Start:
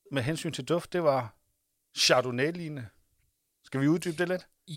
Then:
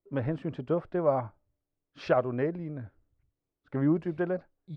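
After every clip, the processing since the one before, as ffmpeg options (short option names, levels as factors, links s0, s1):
-af "lowpass=1100"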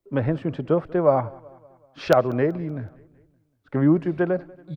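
-filter_complex "[0:a]acrossover=split=110|810[s0][s1][s2];[s2]aeval=exprs='(mod(10*val(0)+1,2)-1)/10':c=same[s3];[s0][s1][s3]amix=inputs=3:normalize=0,aecho=1:1:189|378|567|756:0.0708|0.0375|0.0199|0.0105,volume=2.37"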